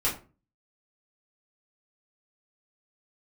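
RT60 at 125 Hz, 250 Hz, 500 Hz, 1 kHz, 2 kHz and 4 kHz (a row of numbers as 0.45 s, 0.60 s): 0.50 s, 0.45 s, 0.40 s, 0.30 s, 0.30 s, 0.20 s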